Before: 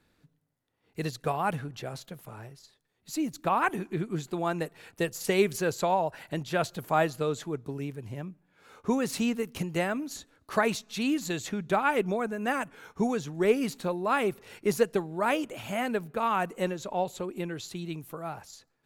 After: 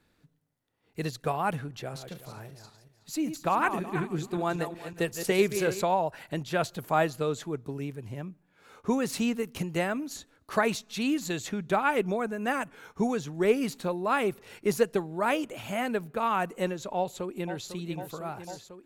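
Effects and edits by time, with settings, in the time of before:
1.77–5.82 s: backward echo that repeats 186 ms, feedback 41%, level -9 dB
16.97–17.68 s: echo throw 500 ms, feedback 85%, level -10.5 dB

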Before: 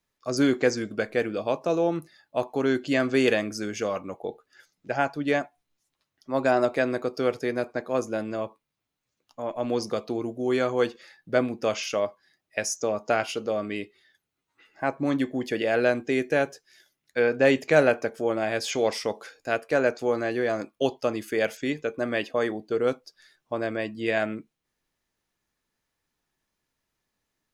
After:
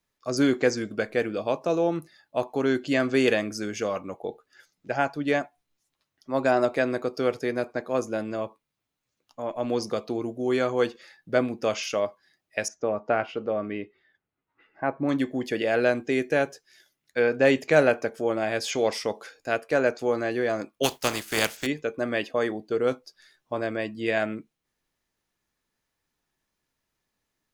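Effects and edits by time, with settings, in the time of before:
12.68–15.09 s: low-pass 2 kHz
20.83–21.65 s: spectral contrast reduction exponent 0.42
22.90–23.62 s: doubling 16 ms -10 dB

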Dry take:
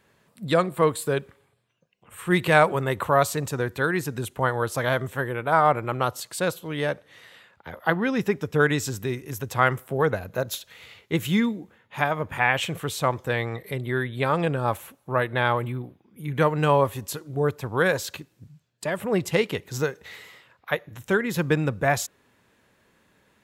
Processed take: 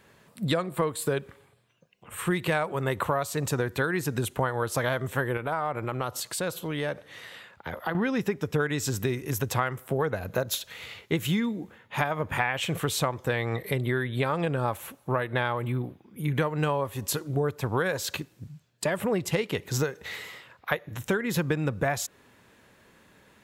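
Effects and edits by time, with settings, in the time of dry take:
5.37–7.95 s: compression 2.5:1, threshold -35 dBFS
whole clip: compression 10:1, threshold -28 dBFS; trim +5 dB

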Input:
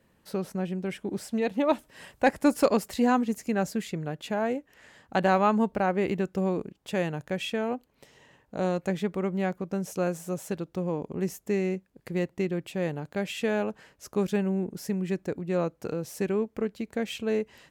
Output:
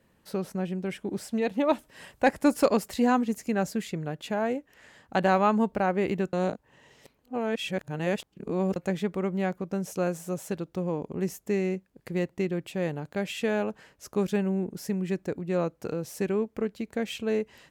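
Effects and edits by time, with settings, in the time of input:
6.33–8.76 s: reverse

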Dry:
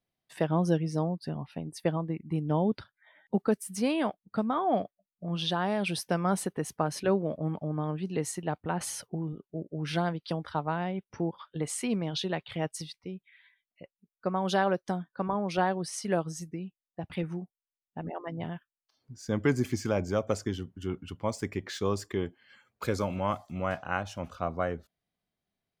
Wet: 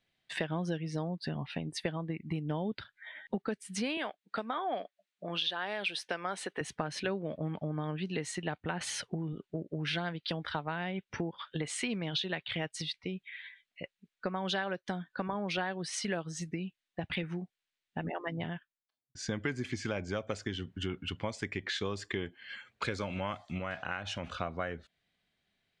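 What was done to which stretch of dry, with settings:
3.97–6.61 s: high-pass 380 Hz
18.15–19.15 s: studio fade out
23.58–24.36 s: compression 2:1, threshold -36 dBFS
whole clip: low-pass 8.6 kHz 24 dB/octave; high-order bell 2.5 kHz +9 dB; compression 4:1, threshold -38 dBFS; trim +4.5 dB

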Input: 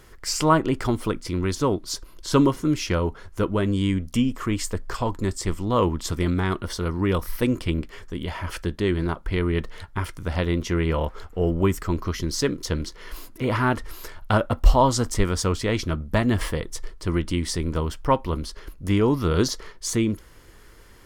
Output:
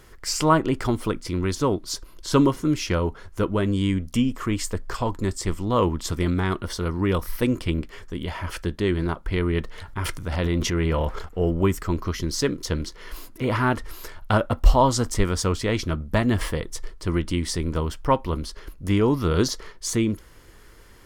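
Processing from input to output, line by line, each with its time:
9.78–11.29 s: transient shaper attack -3 dB, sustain +9 dB

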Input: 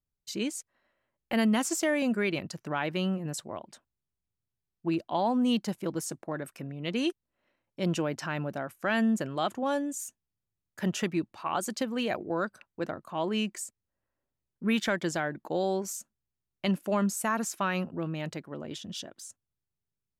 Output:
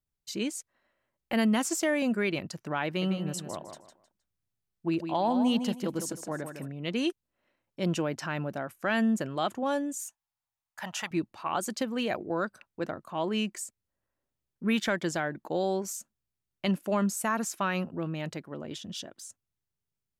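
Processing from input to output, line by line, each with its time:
2.86–6.68 s: feedback delay 156 ms, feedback 27%, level -8 dB
10.06–11.11 s: resonant low shelf 570 Hz -13 dB, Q 3

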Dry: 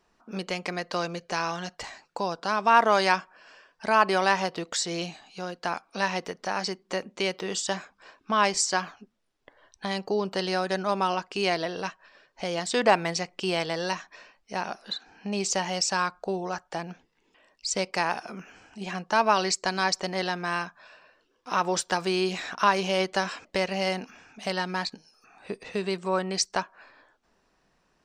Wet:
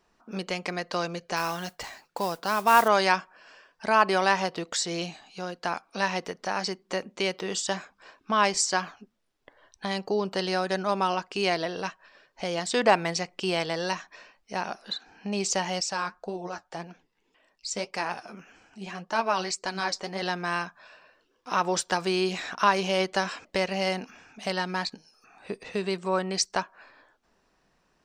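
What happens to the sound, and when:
1.36–2.88 s: modulation noise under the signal 17 dB
15.80–20.22 s: flange 1.8 Hz, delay 2.8 ms, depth 7.9 ms, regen +50%

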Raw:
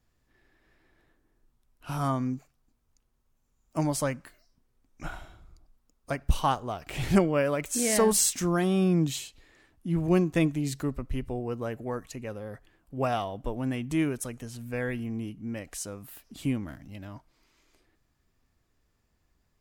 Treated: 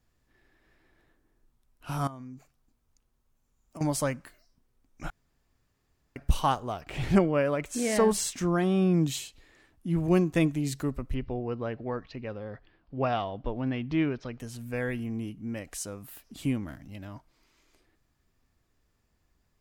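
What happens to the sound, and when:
2.07–3.81 s: compression 10:1, threshold -39 dBFS
5.10–6.16 s: room tone
6.81–8.94 s: low-pass 3.3 kHz 6 dB/octave
11.14–14.40 s: steep low-pass 5 kHz 48 dB/octave

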